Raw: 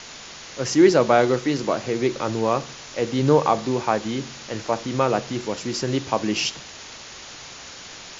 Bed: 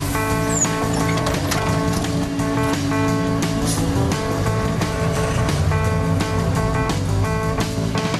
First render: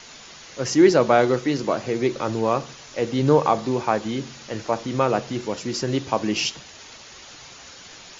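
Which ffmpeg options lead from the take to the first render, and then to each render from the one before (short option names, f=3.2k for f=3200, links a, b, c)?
-af "afftdn=nr=6:nf=-40"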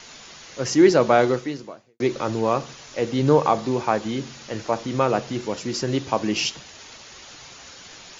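-filter_complex "[0:a]asplit=2[a][b];[a]atrim=end=2,asetpts=PTS-STARTPTS,afade=t=out:st=1.28:d=0.72:c=qua[c];[b]atrim=start=2,asetpts=PTS-STARTPTS,afade=t=in:d=0.004:c=hsin[d];[c][d]concat=n=2:v=0:a=1"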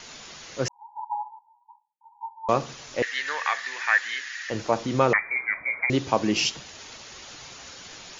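-filter_complex "[0:a]asettb=1/sr,asplit=3[a][b][c];[a]atrim=end=0.684[d];[b]atrim=start=0.68:end=2.49,asetpts=PTS-STARTPTS,afade=t=in:d=0.004:c=qsin,afade=t=out:st=1.806:d=0.004:c=qsin,asuperpass=centerf=900:order=20:qfactor=5[e];[c]atrim=start=2.486[f];[d][e]acrossfade=d=0.004:c1=hsin:c2=qsin[g];[g][f]acrossfade=d=0.004:c1=qsin:c2=hsin,asettb=1/sr,asplit=3[h][i][j];[h]atrim=end=3.024[k];[i]atrim=start=3.02:end=4.5,asetpts=PTS-STARTPTS,afade=t=in:d=0.004:c=qsin,afade=t=out:st=1.476:d=0.004:c=qsin,highpass=f=1.8k:t=q:w=13[l];[j]atrim=start=4.496[m];[k][l]acrossfade=d=0.004:c1=hsin:c2=qsin[n];[n][m]acrossfade=d=0.004:c1=qsin:c2=hsin,asettb=1/sr,asplit=3[o][p][q];[o]atrim=end=5.134[r];[p]atrim=start=5.13:end=5.9,asetpts=PTS-STARTPTS,afade=t=in:d=0.004:c=qsin,afade=t=out:st=0.766:d=0.004:c=qsin,lowpass=f=2.1k:t=q:w=0.5098,lowpass=f=2.1k:t=q:w=0.6013,lowpass=f=2.1k:t=q:w=0.9,lowpass=f=2.1k:t=q:w=2.563,afreqshift=-2500[s];[q]atrim=start=5.896[t];[r][s]acrossfade=d=0.004:c1=hsin:c2=qsin[u];[u][t]acrossfade=d=0.004:c1=qsin:c2=hsin"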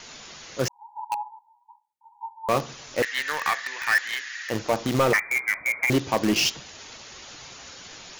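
-filter_complex "[0:a]asplit=2[a][b];[b]acrusher=bits=3:mix=0:aa=0.000001,volume=-5dB[c];[a][c]amix=inputs=2:normalize=0,asoftclip=type=tanh:threshold=-13.5dB"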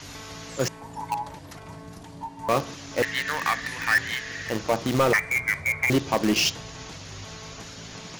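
-filter_complex "[1:a]volume=-22.5dB[a];[0:a][a]amix=inputs=2:normalize=0"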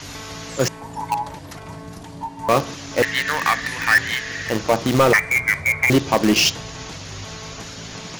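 -af "volume=6dB"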